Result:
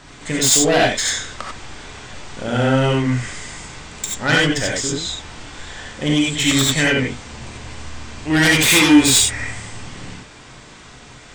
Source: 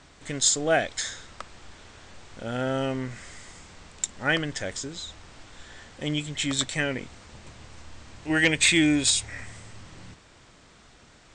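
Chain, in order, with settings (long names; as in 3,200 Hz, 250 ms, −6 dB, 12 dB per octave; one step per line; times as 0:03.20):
sine wavefolder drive 7 dB, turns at −11 dBFS
reverb whose tail is shaped and stops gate 110 ms rising, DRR −3 dB
level −2.5 dB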